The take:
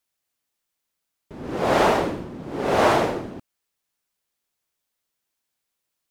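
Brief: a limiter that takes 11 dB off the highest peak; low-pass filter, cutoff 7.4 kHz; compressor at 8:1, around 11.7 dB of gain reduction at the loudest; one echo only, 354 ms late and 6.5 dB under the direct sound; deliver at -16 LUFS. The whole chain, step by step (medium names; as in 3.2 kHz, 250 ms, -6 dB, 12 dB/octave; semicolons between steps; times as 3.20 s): low-pass 7.4 kHz; compression 8:1, threshold -26 dBFS; peak limiter -28 dBFS; delay 354 ms -6.5 dB; trim +21 dB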